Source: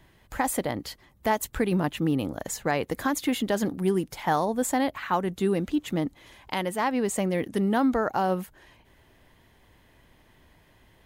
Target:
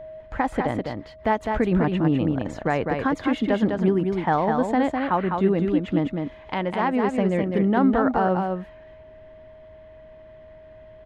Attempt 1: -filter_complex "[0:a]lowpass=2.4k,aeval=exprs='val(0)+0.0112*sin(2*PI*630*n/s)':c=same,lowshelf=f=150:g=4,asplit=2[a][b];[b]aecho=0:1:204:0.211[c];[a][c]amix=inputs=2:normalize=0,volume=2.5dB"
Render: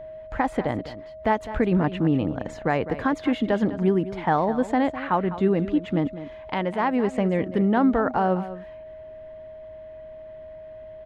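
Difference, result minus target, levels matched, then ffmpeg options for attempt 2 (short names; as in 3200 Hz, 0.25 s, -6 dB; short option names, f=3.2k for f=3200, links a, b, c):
echo-to-direct -9 dB
-filter_complex "[0:a]lowpass=2.4k,aeval=exprs='val(0)+0.0112*sin(2*PI*630*n/s)':c=same,lowshelf=f=150:g=4,asplit=2[a][b];[b]aecho=0:1:204:0.596[c];[a][c]amix=inputs=2:normalize=0,volume=2.5dB"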